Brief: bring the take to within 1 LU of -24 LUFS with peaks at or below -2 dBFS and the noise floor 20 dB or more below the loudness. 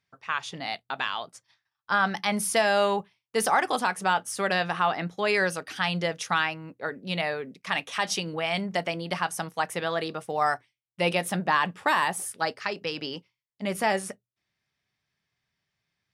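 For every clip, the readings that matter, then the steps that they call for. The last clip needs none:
loudness -27.5 LUFS; peak -10.0 dBFS; loudness target -24.0 LUFS
-> gain +3.5 dB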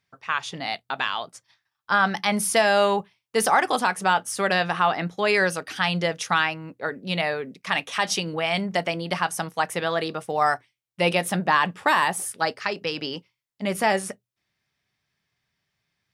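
loudness -24.0 LUFS; peak -6.5 dBFS; noise floor -82 dBFS

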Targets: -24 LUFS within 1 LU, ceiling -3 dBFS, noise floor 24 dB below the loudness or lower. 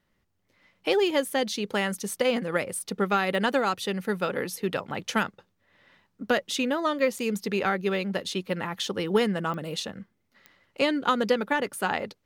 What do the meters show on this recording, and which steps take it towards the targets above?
clicks 4; loudness -27.5 LUFS; peak -11.0 dBFS; loudness target -24.0 LUFS
-> de-click; gain +3.5 dB

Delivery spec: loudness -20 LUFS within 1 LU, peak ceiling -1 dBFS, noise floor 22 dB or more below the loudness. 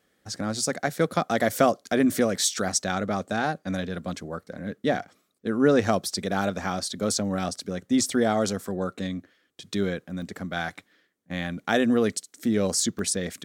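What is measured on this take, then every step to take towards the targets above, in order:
dropouts 3; longest dropout 1.1 ms; loudness -26.5 LUFS; peak -6.0 dBFS; loudness target -20.0 LUFS
-> interpolate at 1.53/10.22/12.99, 1.1 ms; gain +6.5 dB; limiter -1 dBFS

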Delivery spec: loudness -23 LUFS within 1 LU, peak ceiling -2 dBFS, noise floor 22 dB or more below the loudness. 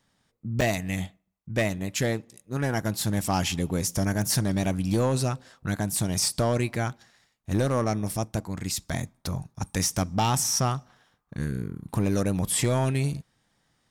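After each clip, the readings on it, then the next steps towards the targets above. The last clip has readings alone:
clipped 0.8%; flat tops at -17.0 dBFS; dropouts 1; longest dropout 5.4 ms; loudness -27.5 LUFS; peak -17.0 dBFS; loudness target -23.0 LUFS
-> clip repair -17 dBFS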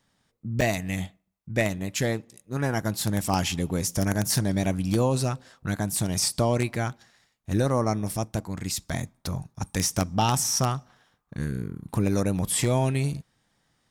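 clipped 0.0%; dropouts 1; longest dropout 5.4 ms
-> interpolate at 0.61, 5.4 ms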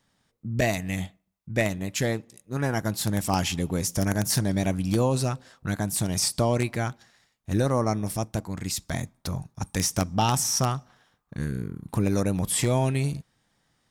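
dropouts 0; loudness -27.0 LUFS; peak -8.0 dBFS; loudness target -23.0 LUFS
-> gain +4 dB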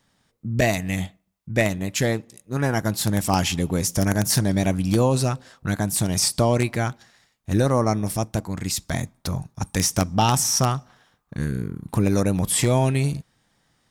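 loudness -23.0 LUFS; peak -4.0 dBFS; noise floor -69 dBFS

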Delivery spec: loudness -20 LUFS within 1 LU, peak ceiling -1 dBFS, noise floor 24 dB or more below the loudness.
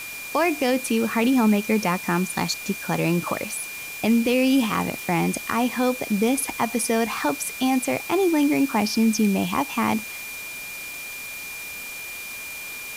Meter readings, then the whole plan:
steady tone 2400 Hz; tone level -34 dBFS; noise floor -35 dBFS; noise floor target -48 dBFS; loudness -23.5 LUFS; peak -10.5 dBFS; loudness target -20.0 LUFS
-> notch 2400 Hz, Q 30; noise print and reduce 13 dB; gain +3.5 dB

